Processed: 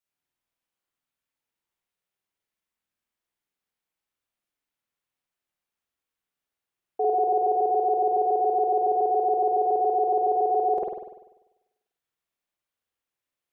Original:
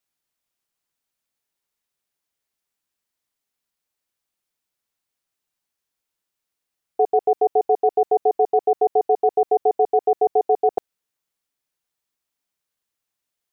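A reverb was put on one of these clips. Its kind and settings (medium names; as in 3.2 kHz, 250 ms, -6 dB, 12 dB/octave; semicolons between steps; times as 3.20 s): spring tank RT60 1 s, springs 49 ms, chirp 55 ms, DRR -5 dB; trim -8.5 dB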